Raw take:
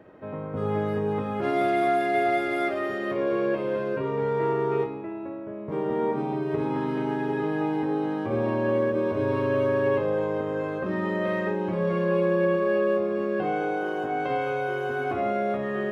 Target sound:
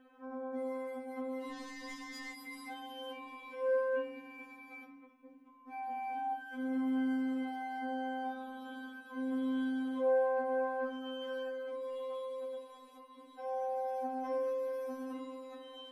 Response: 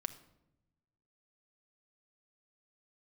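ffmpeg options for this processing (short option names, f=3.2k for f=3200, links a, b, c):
-filter_complex "[0:a]acrossover=split=130|650|1000[a][b][c][d];[a]acompressor=threshold=-53dB:ratio=6[e];[e][b][c][d]amix=inputs=4:normalize=0[f];[1:a]atrim=start_sample=2205,afade=t=out:st=0.17:d=0.01,atrim=end_sample=7938,asetrate=88200,aresample=44100[g];[f][g]afir=irnorm=-1:irlink=0,asplit=3[h][i][j];[h]afade=t=out:st=1.5:d=0.02[k];[i]adynamicsmooth=sensitivity=6.5:basefreq=600,afade=t=in:st=1.5:d=0.02,afade=t=out:st=2.32:d=0.02[l];[j]afade=t=in:st=2.32:d=0.02[m];[k][l][m]amix=inputs=3:normalize=0,crystalizer=i=1.5:c=0,afftfilt=real='re*3.46*eq(mod(b,12),0)':imag='im*3.46*eq(mod(b,12),0)':win_size=2048:overlap=0.75"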